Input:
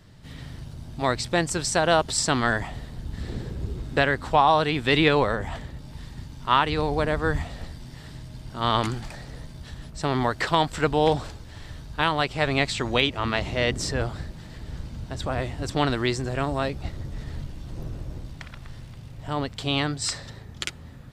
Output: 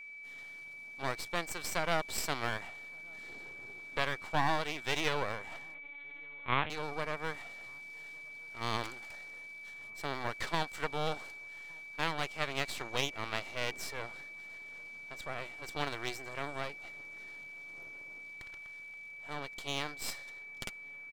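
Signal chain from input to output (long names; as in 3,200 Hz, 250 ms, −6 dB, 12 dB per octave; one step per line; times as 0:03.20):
high-pass filter 450 Hz 12 dB per octave
half-wave rectification
steady tone 2,300 Hz −38 dBFS
0:05.74–0:06.70: linear-prediction vocoder at 8 kHz pitch kept
slap from a distant wall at 200 metres, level −29 dB
level −7.5 dB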